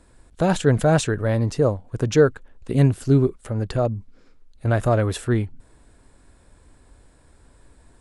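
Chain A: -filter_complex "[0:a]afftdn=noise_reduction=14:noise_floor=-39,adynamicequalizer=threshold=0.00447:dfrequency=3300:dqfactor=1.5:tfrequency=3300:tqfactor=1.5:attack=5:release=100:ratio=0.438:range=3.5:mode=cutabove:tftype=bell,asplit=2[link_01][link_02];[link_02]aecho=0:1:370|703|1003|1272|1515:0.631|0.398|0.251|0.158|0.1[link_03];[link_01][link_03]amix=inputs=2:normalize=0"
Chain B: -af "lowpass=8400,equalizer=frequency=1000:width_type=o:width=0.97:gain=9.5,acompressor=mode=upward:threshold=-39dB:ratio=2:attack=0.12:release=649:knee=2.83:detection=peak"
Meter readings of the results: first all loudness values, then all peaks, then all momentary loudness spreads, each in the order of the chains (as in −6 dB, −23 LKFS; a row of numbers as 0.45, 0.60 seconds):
−20.5, −20.0 LKFS; −3.0, −3.0 dBFS; 11, 9 LU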